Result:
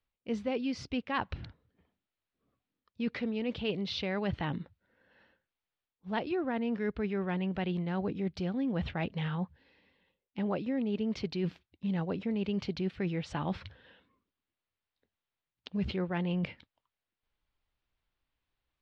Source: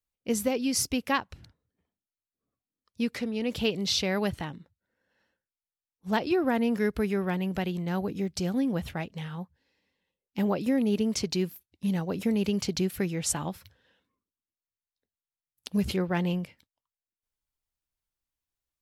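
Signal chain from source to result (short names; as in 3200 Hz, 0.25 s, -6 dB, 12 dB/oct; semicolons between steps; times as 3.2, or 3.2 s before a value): reverse; compressor 5:1, threshold -40 dBFS, peak gain reduction 17 dB; reverse; LPF 3800 Hz 24 dB/oct; gain +8.5 dB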